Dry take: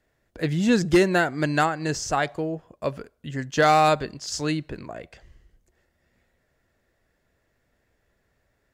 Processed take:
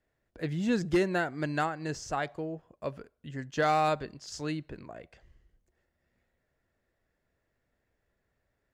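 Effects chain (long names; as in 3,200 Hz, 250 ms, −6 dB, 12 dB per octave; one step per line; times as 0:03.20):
high-shelf EQ 4,200 Hz −5.5 dB
level −8 dB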